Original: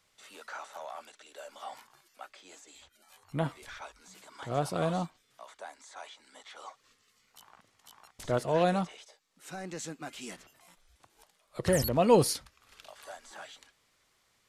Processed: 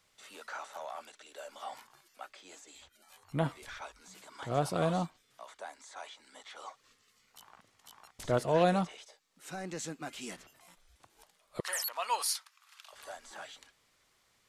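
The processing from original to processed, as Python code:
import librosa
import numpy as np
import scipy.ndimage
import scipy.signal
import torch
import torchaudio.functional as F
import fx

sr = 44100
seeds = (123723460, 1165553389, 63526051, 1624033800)

y = fx.cheby1_highpass(x, sr, hz=1000.0, order=3, at=(11.6, 12.93))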